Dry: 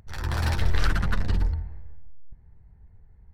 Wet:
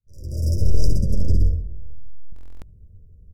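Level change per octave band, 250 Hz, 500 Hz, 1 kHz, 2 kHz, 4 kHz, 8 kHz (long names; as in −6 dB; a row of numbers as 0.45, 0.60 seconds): +4.5 dB, +3.5 dB, below −25 dB, below −30 dB, −5.5 dB, can't be measured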